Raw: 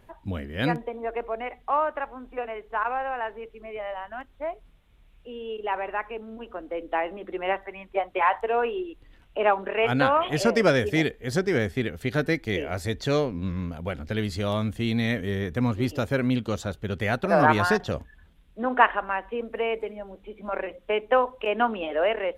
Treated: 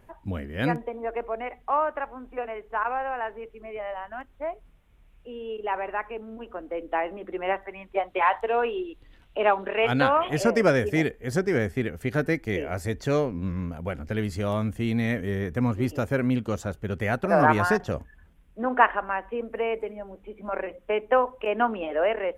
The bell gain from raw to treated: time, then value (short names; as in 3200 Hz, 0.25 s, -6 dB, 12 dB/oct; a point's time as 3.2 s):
bell 3800 Hz 0.72 oct
7.56 s -7 dB
8.26 s +2 dB
9.96 s +2 dB
10.46 s -10 dB